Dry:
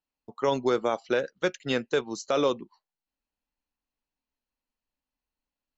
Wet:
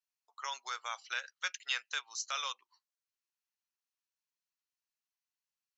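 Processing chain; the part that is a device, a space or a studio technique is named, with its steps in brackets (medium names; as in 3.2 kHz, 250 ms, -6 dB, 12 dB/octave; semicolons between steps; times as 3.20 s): 0.76–2.53 s: dynamic bell 2.8 kHz, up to +4 dB, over -46 dBFS, Q 1.4; headphones lying on a table (high-pass 1.1 kHz 24 dB/octave; peaking EQ 5.9 kHz +7.5 dB 0.58 oct); trim -5 dB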